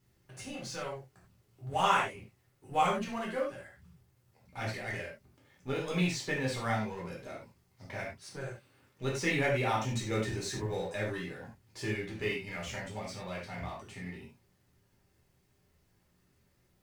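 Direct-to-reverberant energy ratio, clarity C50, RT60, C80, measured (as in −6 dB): −4.5 dB, 4.5 dB, non-exponential decay, 9.0 dB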